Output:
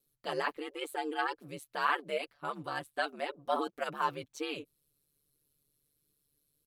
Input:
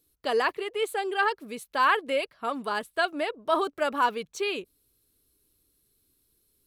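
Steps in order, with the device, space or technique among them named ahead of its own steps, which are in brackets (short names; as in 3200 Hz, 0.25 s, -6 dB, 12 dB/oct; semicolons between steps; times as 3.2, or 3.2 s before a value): ring-modulated robot voice (ring modulator 73 Hz; comb 6.9 ms, depth 61%); gain -6 dB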